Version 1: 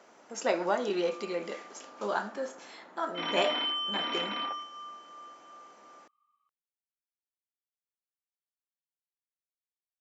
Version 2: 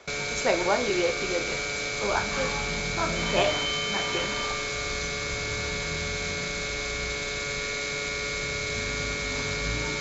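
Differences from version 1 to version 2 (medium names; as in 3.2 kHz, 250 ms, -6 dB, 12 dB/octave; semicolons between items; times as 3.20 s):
speech +3.5 dB; first sound: unmuted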